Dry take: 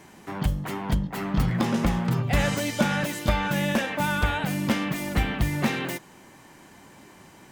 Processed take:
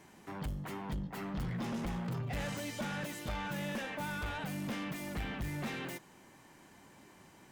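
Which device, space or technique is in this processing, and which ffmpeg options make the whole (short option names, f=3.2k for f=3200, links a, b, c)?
saturation between pre-emphasis and de-emphasis: -af "highshelf=f=2.6k:g=10.5,asoftclip=type=tanh:threshold=-24dB,highshelf=f=2.6k:g=-10.5,volume=-8.5dB"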